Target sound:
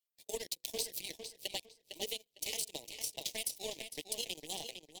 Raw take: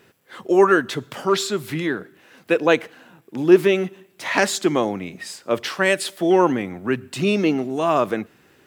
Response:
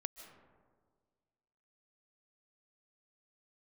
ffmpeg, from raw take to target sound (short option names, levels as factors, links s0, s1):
-filter_complex "[0:a]aderivative,bandreject=f=60:t=h:w=6,bandreject=f=120:t=h:w=6,bandreject=f=180:t=h:w=6,bandreject=f=240:t=h:w=6,bandreject=f=300:t=h:w=6,bandreject=f=360:t=h:w=6,bandreject=f=420:t=h:w=6,bandreject=f=480:t=h:w=6,aecho=1:1:7.3:0.6,asplit=2[s0][s1];[s1]alimiter=limit=0.075:level=0:latency=1:release=110,volume=0.708[s2];[s0][s2]amix=inputs=2:normalize=0,acompressor=threshold=0.02:ratio=6,asetrate=29433,aresample=44100,atempo=1.49831,aeval=exprs='0.0794*(cos(1*acos(clip(val(0)/0.0794,-1,1)))-cos(1*PI/2))+0.0112*(cos(7*acos(clip(val(0)/0.0794,-1,1)))-cos(7*PI/2))':c=same,asuperstop=centerf=790:order=4:qfactor=0.64,asplit=2[s3][s4];[s4]adelay=789,lowpass=f=3400:p=1,volume=0.447,asplit=2[s5][s6];[s6]adelay=789,lowpass=f=3400:p=1,volume=0.26,asplit=2[s7][s8];[s8]adelay=789,lowpass=f=3400:p=1,volume=0.26[s9];[s3][s5][s7][s9]amix=inputs=4:normalize=0,asetrate=76440,aresample=44100,volume=1.41"